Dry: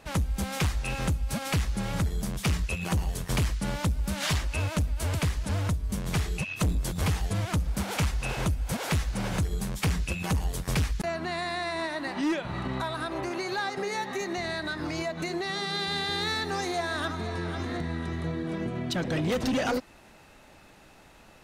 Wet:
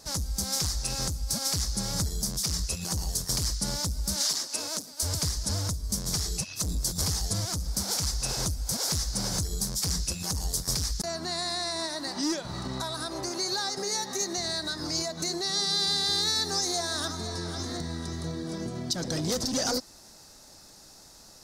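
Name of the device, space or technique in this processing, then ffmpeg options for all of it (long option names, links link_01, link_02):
over-bright horn tweeter: -filter_complex "[0:a]asettb=1/sr,asplit=3[link_01][link_02][link_03];[link_01]atrim=end=4.164[link_04];[link_02]atrim=start=4.16:end=5.03,asetpts=PTS-STARTPTS,afade=type=in:duration=0.004:curve=qsin,afade=type=out:start_time=0.866:duration=0.004:curve=qsin,highpass=frequency=220:width=0.5412,highpass=frequency=220:width=1.3066[link_05];[link_03]atrim=start=5.026[link_06];[link_04][link_05]acrossfade=duration=0.004:curve1=hsin:curve2=qsin[link_07];[link_07][link_06]acrossfade=duration=0.004:curve1=qsin:curve2=hsin,highshelf=frequency=3700:width_type=q:width=3:gain=11.5,alimiter=limit=-14dB:level=0:latency=1:release=104,volume=-2.5dB"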